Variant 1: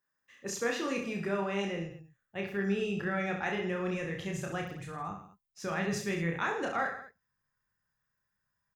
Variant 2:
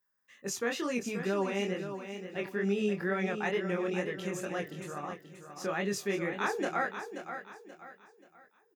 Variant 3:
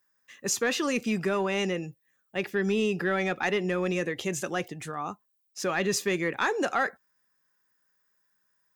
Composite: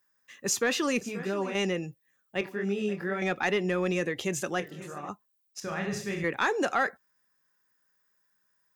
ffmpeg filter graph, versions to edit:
-filter_complex "[1:a]asplit=3[s0][s1][s2];[2:a]asplit=5[s3][s4][s5][s6][s7];[s3]atrim=end=1.012[s8];[s0]atrim=start=1.008:end=1.552[s9];[s4]atrim=start=1.548:end=2.412[s10];[s1]atrim=start=2.408:end=3.222[s11];[s5]atrim=start=3.218:end=4.602[s12];[s2]atrim=start=4.598:end=5.092[s13];[s6]atrim=start=5.088:end=5.602[s14];[0:a]atrim=start=5.598:end=6.242[s15];[s7]atrim=start=6.238[s16];[s8][s9]acrossfade=d=0.004:c1=hsin:c2=hsin[s17];[s17][s10]acrossfade=d=0.004:c1=hsin:c2=hsin[s18];[s18][s11]acrossfade=d=0.004:c1=hsin:c2=hsin[s19];[s19][s12]acrossfade=d=0.004:c1=hsin:c2=hsin[s20];[s20][s13]acrossfade=d=0.004:c1=hsin:c2=hsin[s21];[s21][s14]acrossfade=d=0.004:c1=hsin:c2=hsin[s22];[s22][s15]acrossfade=d=0.004:c1=hsin:c2=hsin[s23];[s23][s16]acrossfade=d=0.004:c1=hsin:c2=hsin"

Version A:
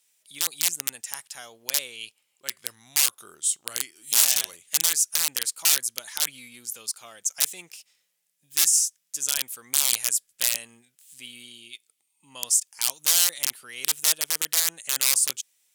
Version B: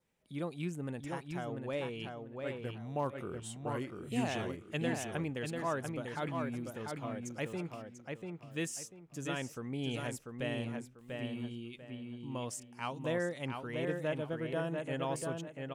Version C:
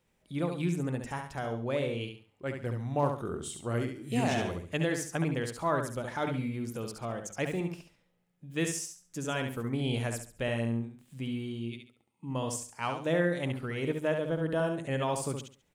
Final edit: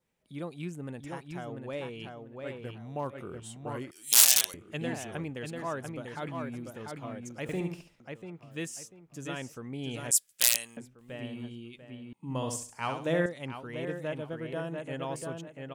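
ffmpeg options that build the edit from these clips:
-filter_complex "[0:a]asplit=2[s0][s1];[2:a]asplit=2[s2][s3];[1:a]asplit=5[s4][s5][s6][s7][s8];[s4]atrim=end=3.912[s9];[s0]atrim=start=3.908:end=4.542[s10];[s5]atrim=start=4.538:end=7.492[s11];[s2]atrim=start=7.488:end=8.002[s12];[s6]atrim=start=7.998:end=10.112[s13];[s1]atrim=start=10.108:end=10.772[s14];[s7]atrim=start=10.768:end=12.132[s15];[s3]atrim=start=12.128:end=13.262[s16];[s8]atrim=start=13.258[s17];[s9][s10]acrossfade=d=0.004:c1=hsin:c2=hsin[s18];[s18][s11]acrossfade=d=0.004:c1=hsin:c2=hsin[s19];[s19][s12]acrossfade=d=0.004:c1=hsin:c2=hsin[s20];[s20][s13]acrossfade=d=0.004:c1=hsin:c2=hsin[s21];[s21][s14]acrossfade=d=0.004:c1=hsin:c2=hsin[s22];[s22][s15]acrossfade=d=0.004:c1=hsin:c2=hsin[s23];[s23][s16]acrossfade=d=0.004:c1=hsin:c2=hsin[s24];[s24][s17]acrossfade=d=0.004:c1=hsin:c2=hsin"

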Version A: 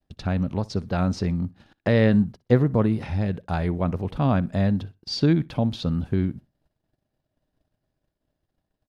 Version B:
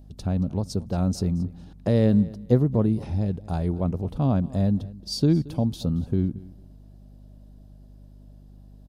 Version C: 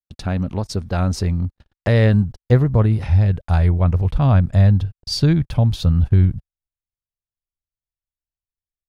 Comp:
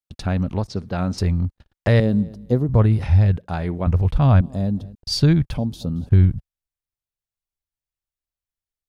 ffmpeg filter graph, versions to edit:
-filter_complex "[0:a]asplit=2[s0][s1];[1:a]asplit=3[s2][s3][s4];[2:a]asplit=6[s5][s6][s7][s8][s9][s10];[s5]atrim=end=0.682[s11];[s0]atrim=start=0.678:end=1.182[s12];[s6]atrim=start=1.178:end=2.002[s13];[s2]atrim=start=1.998:end=2.692[s14];[s7]atrim=start=2.688:end=3.382[s15];[s1]atrim=start=3.378:end=3.872[s16];[s8]atrim=start=3.868:end=4.412[s17];[s3]atrim=start=4.408:end=4.952[s18];[s9]atrim=start=4.948:end=5.582[s19];[s4]atrim=start=5.578:end=6.092[s20];[s10]atrim=start=6.088[s21];[s11][s12]acrossfade=d=0.004:c1=hsin:c2=hsin[s22];[s22][s13]acrossfade=d=0.004:c1=hsin:c2=hsin[s23];[s23][s14]acrossfade=d=0.004:c1=hsin:c2=hsin[s24];[s24][s15]acrossfade=d=0.004:c1=hsin:c2=hsin[s25];[s25][s16]acrossfade=d=0.004:c1=hsin:c2=hsin[s26];[s26][s17]acrossfade=d=0.004:c1=hsin:c2=hsin[s27];[s27][s18]acrossfade=d=0.004:c1=hsin:c2=hsin[s28];[s28][s19]acrossfade=d=0.004:c1=hsin:c2=hsin[s29];[s29][s20]acrossfade=d=0.004:c1=hsin:c2=hsin[s30];[s30][s21]acrossfade=d=0.004:c1=hsin:c2=hsin"

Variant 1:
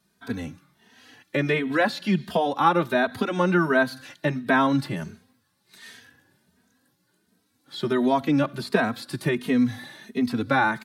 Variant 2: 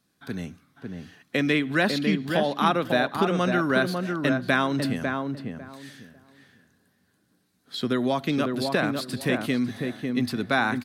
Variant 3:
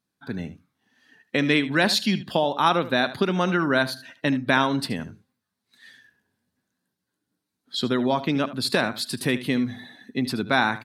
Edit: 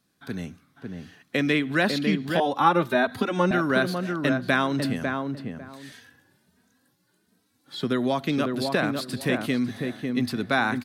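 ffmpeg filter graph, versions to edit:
-filter_complex "[0:a]asplit=2[s0][s1];[1:a]asplit=3[s2][s3][s4];[s2]atrim=end=2.402[s5];[s0]atrim=start=2.398:end=3.512[s6];[s3]atrim=start=3.508:end=5.922[s7];[s1]atrim=start=5.918:end=7.842[s8];[s4]atrim=start=7.838[s9];[s5][s6]acrossfade=d=0.004:c1=hsin:c2=hsin[s10];[s10][s7]acrossfade=d=0.004:c1=hsin:c2=hsin[s11];[s11][s8]acrossfade=d=0.004:c1=hsin:c2=hsin[s12];[s12][s9]acrossfade=d=0.004:c1=hsin:c2=hsin"

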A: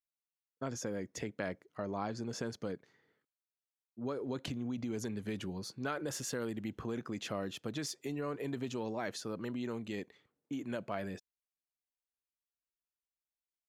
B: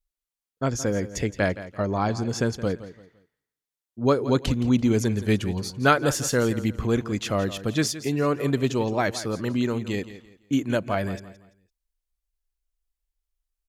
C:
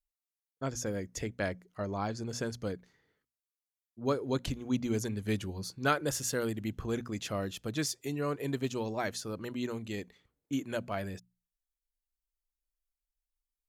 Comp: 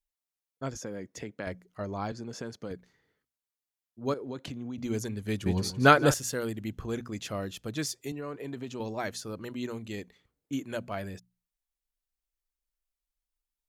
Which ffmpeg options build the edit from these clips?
-filter_complex "[0:a]asplit=4[s0][s1][s2][s3];[2:a]asplit=6[s4][s5][s6][s7][s8][s9];[s4]atrim=end=0.772[s10];[s0]atrim=start=0.768:end=1.472[s11];[s5]atrim=start=1.468:end=2.122[s12];[s1]atrim=start=2.118:end=2.712[s13];[s6]atrim=start=2.708:end=4.142[s14];[s2]atrim=start=4.138:end=4.782[s15];[s7]atrim=start=4.778:end=5.462[s16];[1:a]atrim=start=5.458:end=6.142[s17];[s8]atrim=start=6.138:end=8.122[s18];[s3]atrim=start=8.118:end=8.802[s19];[s9]atrim=start=8.798[s20];[s10][s11]acrossfade=d=0.004:c1=hsin:c2=hsin[s21];[s21][s12]acrossfade=d=0.004:c1=hsin:c2=hsin[s22];[s22][s13]acrossfade=d=0.004:c1=hsin:c2=hsin[s23];[s23][s14]acrossfade=d=0.004:c1=hsin:c2=hsin[s24];[s24][s15]acrossfade=d=0.004:c1=hsin:c2=hsin[s25];[s25][s16]acrossfade=d=0.004:c1=hsin:c2=hsin[s26];[s26][s17]acrossfade=d=0.004:c1=hsin:c2=hsin[s27];[s27][s18]acrossfade=d=0.004:c1=hsin:c2=hsin[s28];[s28][s19]acrossfade=d=0.004:c1=hsin:c2=hsin[s29];[s29][s20]acrossfade=d=0.004:c1=hsin:c2=hsin"

